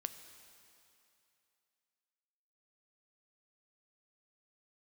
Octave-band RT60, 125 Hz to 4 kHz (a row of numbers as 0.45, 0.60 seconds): 2.5, 2.5, 2.7, 2.8, 2.8, 2.7 seconds